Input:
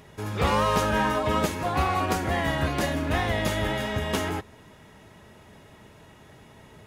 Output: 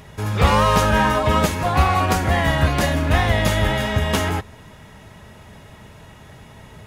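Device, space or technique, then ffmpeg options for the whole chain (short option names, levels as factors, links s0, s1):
low shelf boost with a cut just above: -af "lowshelf=f=110:g=6,equalizer=f=340:t=o:w=0.89:g=-5,volume=2.24"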